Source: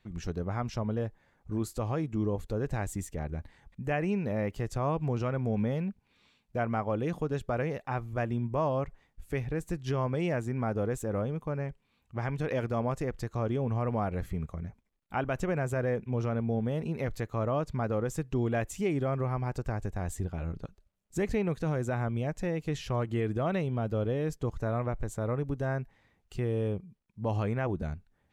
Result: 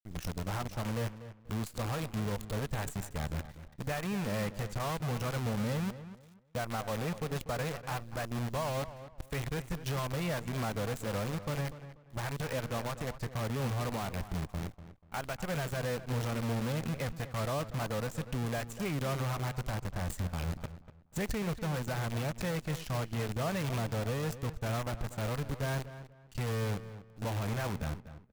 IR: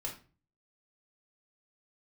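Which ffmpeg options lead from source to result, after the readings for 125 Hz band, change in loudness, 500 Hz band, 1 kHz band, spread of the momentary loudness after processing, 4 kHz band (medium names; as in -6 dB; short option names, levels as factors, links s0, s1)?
-2.5 dB, -3.5 dB, -5.5 dB, -2.5 dB, 7 LU, +7.5 dB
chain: -filter_complex "[0:a]equalizer=f=340:w=2.3:g=-12,alimiter=level_in=1.26:limit=0.0631:level=0:latency=1:release=416,volume=0.794,acrusher=bits=7:dc=4:mix=0:aa=0.000001,asplit=2[s0][s1];[s1]adelay=243,lowpass=f=2700:p=1,volume=0.224,asplit=2[s2][s3];[s3]adelay=243,lowpass=f=2700:p=1,volume=0.26,asplit=2[s4][s5];[s5]adelay=243,lowpass=f=2700:p=1,volume=0.26[s6];[s2][s4][s6]amix=inputs=3:normalize=0[s7];[s0][s7]amix=inputs=2:normalize=0"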